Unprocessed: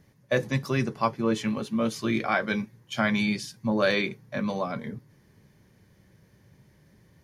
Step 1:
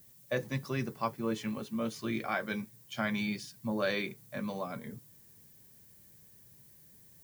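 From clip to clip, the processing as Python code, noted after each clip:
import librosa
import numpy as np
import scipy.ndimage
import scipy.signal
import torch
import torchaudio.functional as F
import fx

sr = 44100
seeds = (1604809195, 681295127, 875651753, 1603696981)

y = fx.dmg_noise_colour(x, sr, seeds[0], colour='violet', level_db=-51.0)
y = y * 10.0 ** (-8.0 / 20.0)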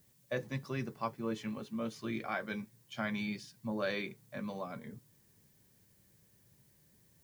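y = fx.high_shelf(x, sr, hz=8700.0, db=-8.5)
y = y * 10.0 ** (-3.5 / 20.0)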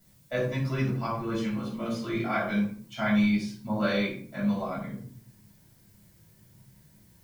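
y = fx.room_shoebox(x, sr, seeds[1], volume_m3=460.0, walls='furnished', distance_m=7.1)
y = y * 10.0 ** (-2.0 / 20.0)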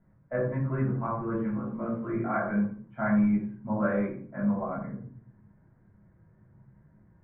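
y = scipy.signal.sosfilt(scipy.signal.butter(6, 1700.0, 'lowpass', fs=sr, output='sos'), x)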